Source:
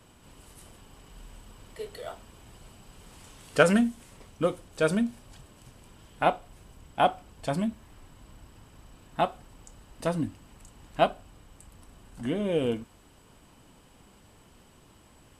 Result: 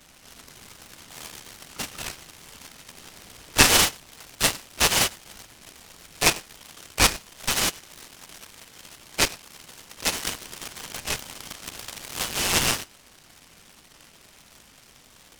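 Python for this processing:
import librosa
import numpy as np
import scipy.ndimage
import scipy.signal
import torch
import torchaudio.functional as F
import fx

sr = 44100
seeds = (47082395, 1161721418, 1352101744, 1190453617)

p1 = fx.freq_invert(x, sr, carrier_hz=3200)
p2 = fx.dynamic_eq(p1, sr, hz=1600.0, q=0.76, threshold_db=-40.0, ratio=4.0, max_db=-4)
p3 = p2 + fx.echo_single(p2, sr, ms=100, db=-19.5, dry=0)
p4 = fx.over_compress(p3, sr, threshold_db=-38.0, ratio=-1.0, at=(10.09, 12.35), fade=0.02)
p5 = fx.low_shelf(p4, sr, hz=230.0, db=10.5)
p6 = fx.quant_dither(p5, sr, seeds[0], bits=6, dither='none')
p7 = p5 + F.gain(torch.from_numpy(p6), -8.5).numpy()
p8 = fx.noise_mod_delay(p7, sr, seeds[1], noise_hz=2600.0, depth_ms=0.097)
y = F.gain(torch.from_numpy(p8), 3.0).numpy()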